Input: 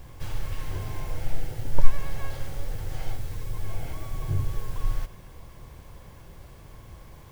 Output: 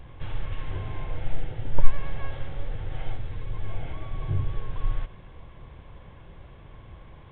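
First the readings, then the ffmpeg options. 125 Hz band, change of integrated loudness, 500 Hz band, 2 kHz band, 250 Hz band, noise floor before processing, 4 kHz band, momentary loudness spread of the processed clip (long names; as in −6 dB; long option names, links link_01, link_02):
0.0 dB, 0.0 dB, 0.0 dB, 0.0 dB, 0.0 dB, −47 dBFS, can't be measured, 17 LU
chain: -af "aresample=8000,aresample=44100"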